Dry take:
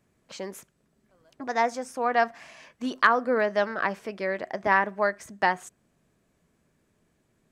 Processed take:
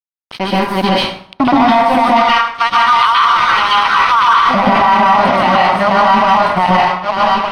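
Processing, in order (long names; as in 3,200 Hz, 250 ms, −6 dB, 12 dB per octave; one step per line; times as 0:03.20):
feedback delay that plays each chunk backwards 606 ms, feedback 48%, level −1 dB
camcorder AGC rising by 9.8 dB per second
0:02.08–0:04.46: Butterworth high-pass 960 Hz 48 dB per octave
downward compressor, threshold −22 dBFS, peak gain reduction 8 dB
phaser with its sweep stopped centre 1,700 Hz, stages 6
dead-zone distortion −41 dBFS
Savitzky-Golay smoothing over 15 samples
dense smooth reverb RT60 0.56 s, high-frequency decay 0.8×, pre-delay 115 ms, DRR −6.5 dB
boost into a limiter +24.5 dB
level −1 dB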